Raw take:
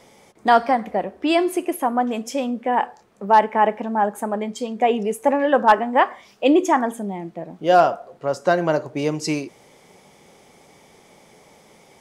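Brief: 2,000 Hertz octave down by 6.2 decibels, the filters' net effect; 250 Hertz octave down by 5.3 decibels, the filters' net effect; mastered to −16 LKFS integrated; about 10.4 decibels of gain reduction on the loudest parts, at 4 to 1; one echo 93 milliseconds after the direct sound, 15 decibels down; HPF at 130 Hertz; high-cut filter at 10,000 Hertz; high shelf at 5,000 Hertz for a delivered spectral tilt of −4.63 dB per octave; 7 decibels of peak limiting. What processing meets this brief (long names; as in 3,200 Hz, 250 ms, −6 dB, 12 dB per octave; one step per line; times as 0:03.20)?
high-pass filter 130 Hz
low-pass filter 10,000 Hz
parametric band 250 Hz −6.5 dB
parametric band 2,000 Hz −7 dB
high-shelf EQ 5,000 Hz −9 dB
downward compressor 4 to 1, threshold −24 dBFS
brickwall limiter −19.5 dBFS
single-tap delay 93 ms −15 dB
level +15 dB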